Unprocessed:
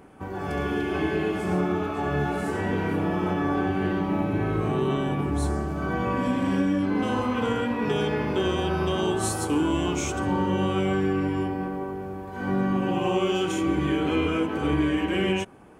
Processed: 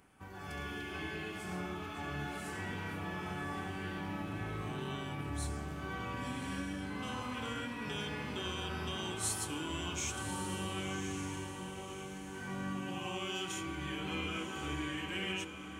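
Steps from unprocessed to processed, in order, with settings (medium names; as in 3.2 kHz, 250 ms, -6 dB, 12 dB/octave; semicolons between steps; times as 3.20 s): amplifier tone stack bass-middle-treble 5-5-5; echo that smears into a reverb 1106 ms, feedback 43%, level -7.5 dB; trim +1.5 dB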